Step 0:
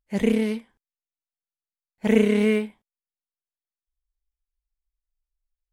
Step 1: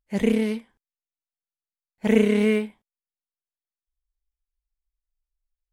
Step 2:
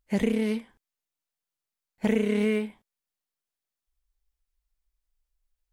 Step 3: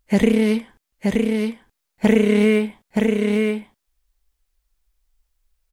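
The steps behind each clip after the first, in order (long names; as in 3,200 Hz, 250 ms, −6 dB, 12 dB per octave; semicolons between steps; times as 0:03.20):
no processing that can be heard
downward compressor 4 to 1, threshold −28 dBFS, peak gain reduction 13.5 dB; level +5 dB
single-tap delay 924 ms −3.5 dB; level +9 dB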